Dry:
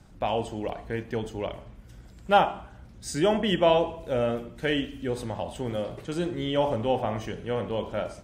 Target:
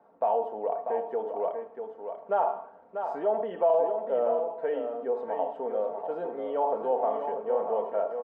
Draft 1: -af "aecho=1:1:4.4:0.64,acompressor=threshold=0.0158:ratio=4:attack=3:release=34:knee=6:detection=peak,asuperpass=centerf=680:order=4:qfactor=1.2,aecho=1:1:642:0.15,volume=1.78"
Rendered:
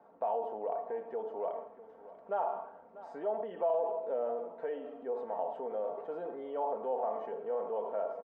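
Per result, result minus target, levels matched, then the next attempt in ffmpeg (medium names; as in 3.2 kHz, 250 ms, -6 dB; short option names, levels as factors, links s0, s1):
compression: peak gain reduction +7.5 dB; echo-to-direct -9.5 dB
-af "aecho=1:1:4.4:0.64,acompressor=threshold=0.0501:ratio=4:attack=3:release=34:knee=6:detection=peak,asuperpass=centerf=680:order=4:qfactor=1.2,aecho=1:1:642:0.15,volume=1.78"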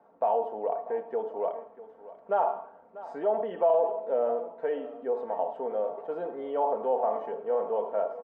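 echo-to-direct -9.5 dB
-af "aecho=1:1:4.4:0.64,acompressor=threshold=0.0501:ratio=4:attack=3:release=34:knee=6:detection=peak,asuperpass=centerf=680:order=4:qfactor=1.2,aecho=1:1:642:0.447,volume=1.78"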